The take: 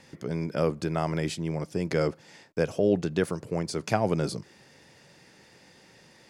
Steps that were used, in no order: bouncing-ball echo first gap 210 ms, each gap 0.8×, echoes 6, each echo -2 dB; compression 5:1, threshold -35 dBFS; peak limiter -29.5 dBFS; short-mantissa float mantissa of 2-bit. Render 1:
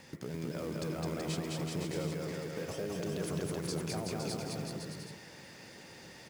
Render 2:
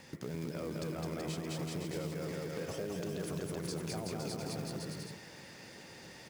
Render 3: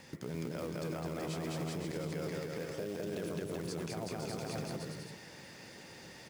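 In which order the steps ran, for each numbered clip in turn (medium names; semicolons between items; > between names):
peak limiter > compression > short-mantissa float > bouncing-ball echo; peak limiter > bouncing-ball echo > compression > short-mantissa float; compression > short-mantissa float > bouncing-ball echo > peak limiter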